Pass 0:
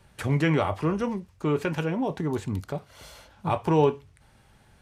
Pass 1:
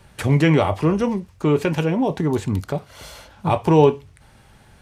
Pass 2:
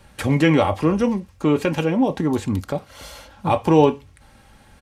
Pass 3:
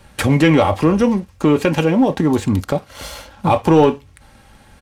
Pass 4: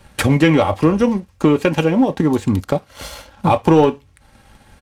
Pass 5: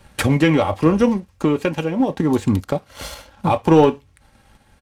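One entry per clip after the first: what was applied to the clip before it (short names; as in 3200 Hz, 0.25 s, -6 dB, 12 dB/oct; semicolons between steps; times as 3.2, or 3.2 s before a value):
dynamic EQ 1400 Hz, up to -5 dB, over -42 dBFS, Q 1.7; gain +7.5 dB
comb 3.7 ms, depth 38%
sample leveller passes 1; in parallel at +2.5 dB: compressor, threshold -23 dBFS, peak gain reduction 15 dB; on the sum: gain -2 dB
transient shaper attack +3 dB, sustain -4 dB; gain -1 dB
random-step tremolo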